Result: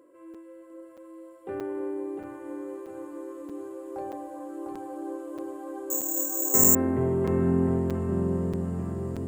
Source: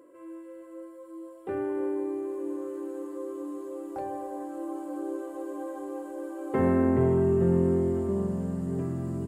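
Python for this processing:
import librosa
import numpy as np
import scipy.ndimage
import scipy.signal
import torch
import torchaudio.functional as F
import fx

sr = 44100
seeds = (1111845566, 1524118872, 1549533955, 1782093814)

p1 = x + fx.echo_feedback(x, sr, ms=702, feedback_pct=40, wet_db=-4, dry=0)
p2 = fx.resample_bad(p1, sr, factor=6, down='filtered', up='zero_stuff', at=(5.9, 6.75))
p3 = fx.buffer_crackle(p2, sr, first_s=0.34, period_s=0.63, block=256, kind='zero')
y = F.gain(torch.from_numpy(p3), -2.5).numpy()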